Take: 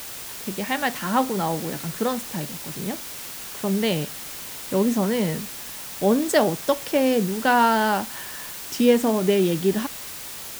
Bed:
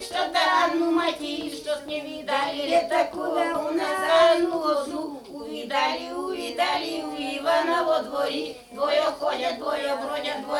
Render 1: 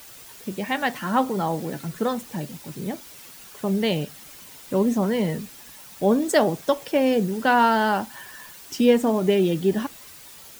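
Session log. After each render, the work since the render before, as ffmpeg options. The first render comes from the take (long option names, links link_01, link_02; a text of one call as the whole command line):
ffmpeg -i in.wav -af "afftdn=noise_reduction=10:noise_floor=-36" out.wav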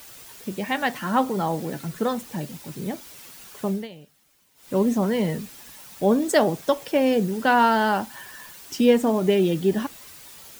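ffmpeg -i in.wav -filter_complex "[0:a]asplit=3[link_01][link_02][link_03];[link_01]atrim=end=3.88,asetpts=PTS-STARTPTS,afade=type=out:start_time=3.66:duration=0.22:silence=0.112202[link_04];[link_02]atrim=start=3.88:end=4.55,asetpts=PTS-STARTPTS,volume=-19dB[link_05];[link_03]atrim=start=4.55,asetpts=PTS-STARTPTS,afade=type=in:duration=0.22:silence=0.112202[link_06];[link_04][link_05][link_06]concat=n=3:v=0:a=1" out.wav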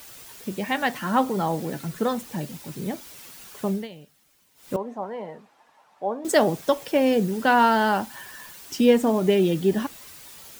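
ffmpeg -i in.wav -filter_complex "[0:a]asettb=1/sr,asplit=3[link_01][link_02][link_03];[link_01]atrim=end=4.764[link_04];[link_02]atrim=start=4.76:end=6.25,asetpts=PTS-STARTPTS,afade=type=in:duration=0.004:curve=qsin,afade=type=out:start_time=1.486:duration=0.004:curve=qsin,bandpass=frequency=830:width_type=q:width=2.1[link_05];[link_03]atrim=start=6.246[link_06];[link_04][link_05]acrossfade=duration=0.004:curve1=hsin:curve2=qsin[link_07];[link_07][link_06]acrossfade=duration=0.004:curve1=qsin:curve2=hsin" out.wav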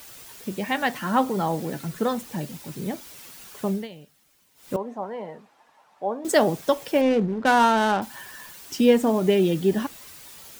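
ffmpeg -i in.wav -filter_complex "[0:a]asettb=1/sr,asplit=3[link_01][link_02][link_03];[link_01]atrim=end=7.014[link_04];[link_02]atrim=start=7.01:end=8.02,asetpts=PTS-STARTPTS,afade=type=in:duration=0.004:curve=qsin,afade=type=out:start_time=1.006:duration=0.004:curve=qsin,adynamicsmooth=sensitivity=3:basefreq=630[link_05];[link_03]atrim=start=8.016[link_06];[link_04][link_05]acrossfade=duration=0.004:curve1=hsin:curve2=qsin[link_07];[link_07][link_06]acrossfade=duration=0.004:curve1=qsin:curve2=hsin" out.wav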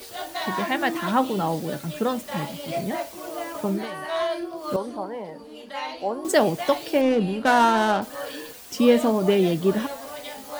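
ffmpeg -i in.wav -i bed.wav -filter_complex "[1:a]volume=-8.5dB[link_01];[0:a][link_01]amix=inputs=2:normalize=0" out.wav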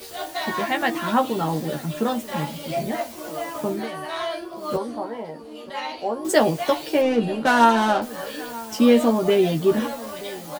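ffmpeg -i in.wav -filter_complex "[0:a]asplit=2[link_01][link_02];[link_02]adelay=13,volume=-4dB[link_03];[link_01][link_03]amix=inputs=2:normalize=0,asplit=2[link_04][link_05];[link_05]adelay=932.9,volume=-18dB,highshelf=frequency=4000:gain=-21[link_06];[link_04][link_06]amix=inputs=2:normalize=0" out.wav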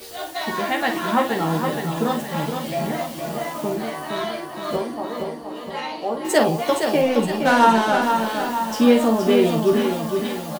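ffmpeg -i in.wav -filter_complex "[0:a]asplit=2[link_01][link_02];[link_02]adelay=49,volume=-8dB[link_03];[link_01][link_03]amix=inputs=2:normalize=0,aecho=1:1:467|934|1401|1868|2335|2802:0.501|0.256|0.13|0.0665|0.0339|0.0173" out.wav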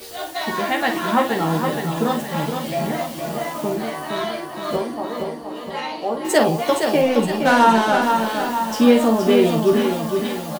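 ffmpeg -i in.wav -af "volume=1.5dB,alimiter=limit=-3dB:level=0:latency=1" out.wav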